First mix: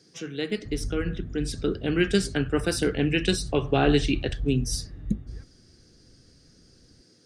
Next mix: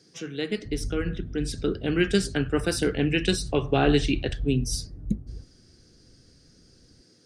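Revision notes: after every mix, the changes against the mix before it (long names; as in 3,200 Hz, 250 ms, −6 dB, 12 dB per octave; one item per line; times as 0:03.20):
background: add Gaussian smoothing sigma 8.8 samples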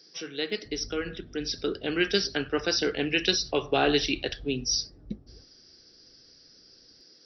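speech: add linear-phase brick-wall low-pass 5,900 Hz
master: add bass and treble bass −14 dB, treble +10 dB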